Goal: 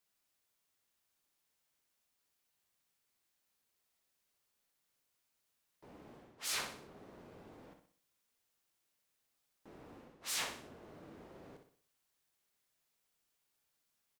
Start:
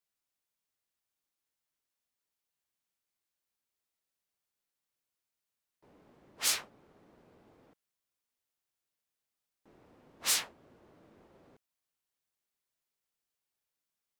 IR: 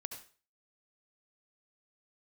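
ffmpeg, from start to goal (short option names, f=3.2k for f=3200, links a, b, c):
-af "areverse,acompressor=threshold=-42dB:ratio=10,areverse,aecho=1:1:62|124|186|248|310:0.447|0.192|0.0826|0.0355|0.0153,volume=5.5dB"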